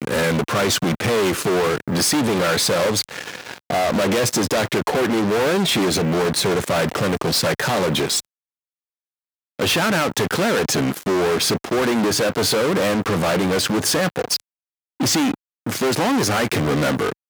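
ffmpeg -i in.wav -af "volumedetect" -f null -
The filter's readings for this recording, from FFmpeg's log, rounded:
mean_volume: -20.4 dB
max_volume: -9.7 dB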